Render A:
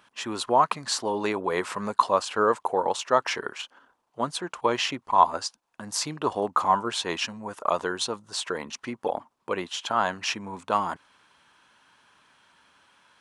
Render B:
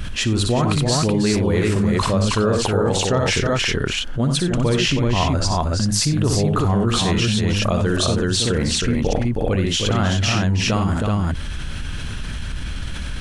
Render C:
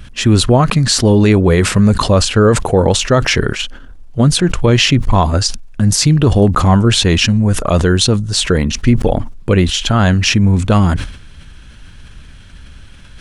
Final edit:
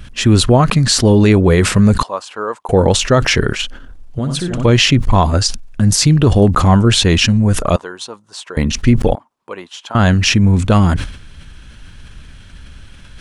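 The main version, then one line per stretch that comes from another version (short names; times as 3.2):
C
2.03–2.69 from A
4.19–4.65 from B
7.76–8.57 from A
9.15–9.95 from A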